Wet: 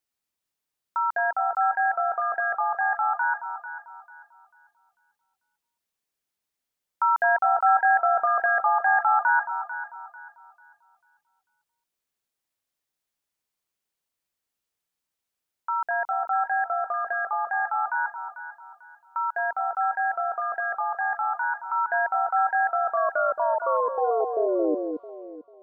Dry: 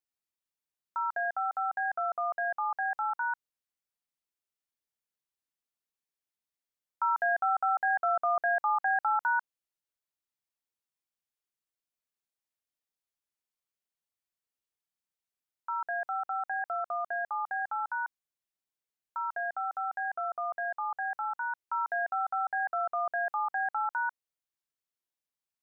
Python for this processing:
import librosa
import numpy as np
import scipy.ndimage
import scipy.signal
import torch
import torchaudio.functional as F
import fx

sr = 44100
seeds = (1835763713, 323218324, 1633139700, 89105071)

y = fx.tape_stop_end(x, sr, length_s=2.78)
y = fx.echo_alternate(y, sr, ms=222, hz=1000.0, feedback_pct=54, wet_db=-5.5)
y = F.gain(torch.from_numpy(y), 6.5).numpy()